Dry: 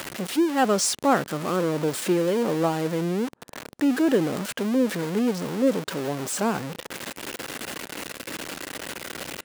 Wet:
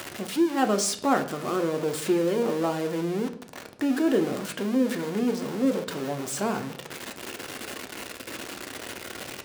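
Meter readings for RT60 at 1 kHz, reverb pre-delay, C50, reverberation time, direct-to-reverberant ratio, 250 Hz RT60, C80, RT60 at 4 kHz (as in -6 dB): 0.55 s, 3 ms, 13.0 dB, 0.60 s, 5.5 dB, 0.75 s, 17.0 dB, 0.45 s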